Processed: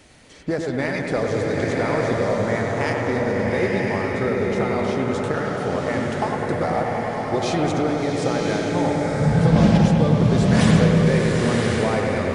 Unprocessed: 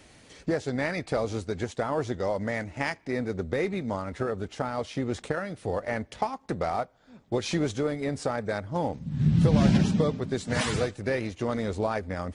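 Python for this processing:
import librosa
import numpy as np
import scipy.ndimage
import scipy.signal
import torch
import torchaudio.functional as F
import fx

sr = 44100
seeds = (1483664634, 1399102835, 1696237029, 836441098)

y = fx.echo_bbd(x, sr, ms=102, stages=2048, feedback_pct=72, wet_db=-5)
y = fx.rev_bloom(y, sr, seeds[0], attack_ms=1050, drr_db=-0.5)
y = F.gain(torch.from_numpy(y), 3.0).numpy()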